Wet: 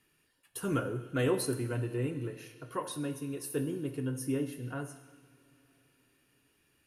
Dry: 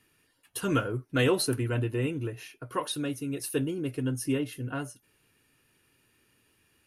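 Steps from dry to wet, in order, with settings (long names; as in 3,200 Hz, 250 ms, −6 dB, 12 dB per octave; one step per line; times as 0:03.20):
on a send at −8 dB: convolution reverb, pre-delay 3 ms
on the sum: dynamic equaliser 3,400 Hz, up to −7 dB, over −49 dBFS, Q 0.93
level −4.5 dB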